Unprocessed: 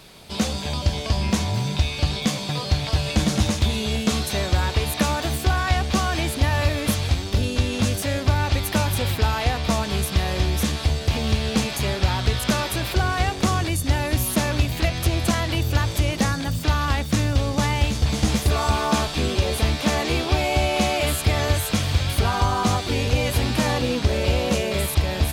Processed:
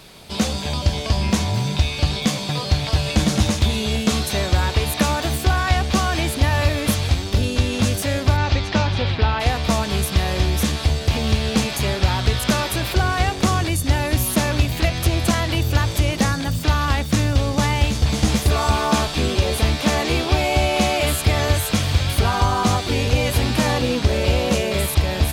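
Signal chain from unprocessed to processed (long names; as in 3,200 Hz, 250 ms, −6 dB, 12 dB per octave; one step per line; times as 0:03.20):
0:08.36–0:09.39: low-pass filter 6,900 Hz → 4,000 Hz 24 dB per octave
level +2.5 dB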